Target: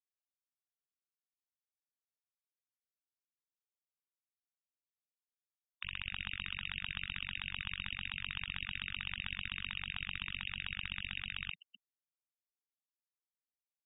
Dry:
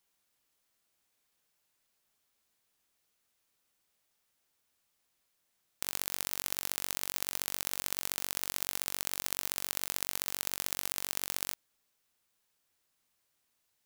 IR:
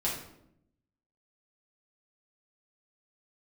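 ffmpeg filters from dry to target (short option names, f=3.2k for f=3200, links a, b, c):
-filter_complex "[0:a]aeval=exprs='(mod(11.2*val(0)+1,2)-1)/11.2':c=same,asplit=2[a][b];[1:a]atrim=start_sample=2205,asetrate=23373,aresample=44100,highshelf=f=6.2k:g=-11.5[c];[b][c]afir=irnorm=-1:irlink=0,volume=-27dB[d];[a][d]amix=inputs=2:normalize=0,acontrast=49,equalizer=f=1.1k:w=1.7:g=9.5,afwtdn=0.00112,lowpass=f=3.2k:t=q:w=0.5098,lowpass=f=3.2k:t=q:w=0.6013,lowpass=f=3.2k:t=q:w=0.9,lowpass=f=3.2k:t=q:w=2.563,afreqshift=-3800,asoftclip=type=hard:threshold=-33.5dB,asubboost=boost=11.5:cutoff=120,asplit=5[e][f][g][h][i];[f]adelay=254,afreqshift=150,volume=-10.5dB[j];[g]adelay=508,afreqshift=300,volume=-20.1dB[k];[h]adelay=762,afreqshift=450,volume=-29.8dB[l];[i]adelay=1016,afreqshift=600,volume=-39.4dB[m];[e][j][k][l][m]amix=inputs=5:normalize=0,dynaudnorm=f=620:g=11:m=4.5dB,acrusher=bits=8:mode=log:mix=0:aa=0.000001,afftfilt=real='re*gte(hypot(re,im),0.00631)':imag='im*gte(hypot(re,im),0.00631)':win_size=1024:overlap=0.75,volume=6.5dB"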